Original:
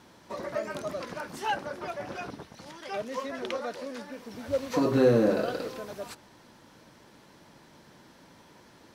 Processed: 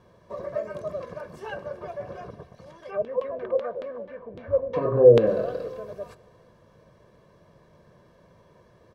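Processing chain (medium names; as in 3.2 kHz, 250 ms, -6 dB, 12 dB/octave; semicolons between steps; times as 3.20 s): tilt shelf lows +8.5 dB, about 1.5 kHz; comb 1.8 ms, depth 75%; 2.90–5.26 s: LFO low-pass saw down 6.9 Hz -> 1.9 Hz 380–3400 Hz; FDN reverb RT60 2 s, low-frequency decay 0.7×, high-frequency decay 1×, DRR 17.5 dB; trim -7.5 dB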